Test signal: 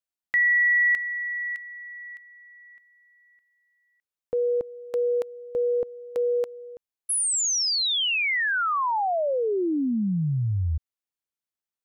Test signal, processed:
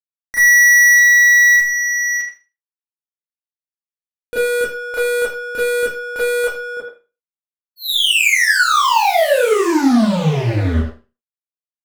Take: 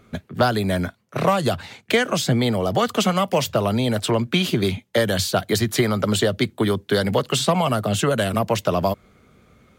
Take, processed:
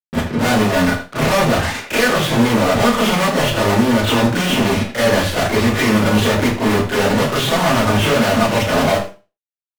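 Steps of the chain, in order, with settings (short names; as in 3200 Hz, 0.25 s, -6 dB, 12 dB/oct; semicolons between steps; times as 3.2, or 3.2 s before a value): LPF 2600 Hz 24 dB/oct; fuzz box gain 41 dB, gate -41 dBFS; speakerphone echo 80 ms, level -6 dB; Schroeder reverb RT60 0.31 s, combs from 26 ms, DRR -9.5 dB; gain -10 dB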